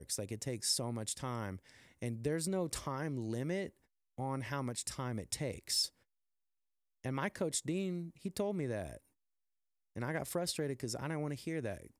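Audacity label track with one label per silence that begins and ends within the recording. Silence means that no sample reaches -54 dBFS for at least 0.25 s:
3.700000	4.180000	silence
5.890000	7.040000	silence
8.980000	9.960000	silence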